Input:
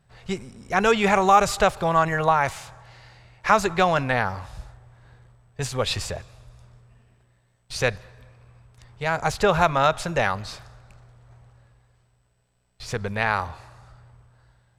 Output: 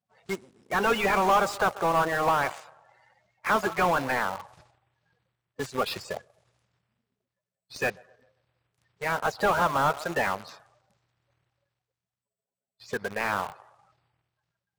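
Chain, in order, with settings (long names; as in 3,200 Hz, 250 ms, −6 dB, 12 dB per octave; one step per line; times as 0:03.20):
spectral magnitudes quantised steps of 30 dB
high-pass filter 82 Hz 12 dB per octave
on a send: delay with a band-pass on its return 131 ms, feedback 45%, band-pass 700 Hz, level −20 dB
on the sum: power curve on the samples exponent 1.4
high-shelf EQ 5,800 Hz +9 dB
mid-hump overdrive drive 22 dB, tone 1,000 Hz, clips at −11 dBFS
in parallel at −6.5 dB: bit reduction 5 bits
on the sum: level −5 dB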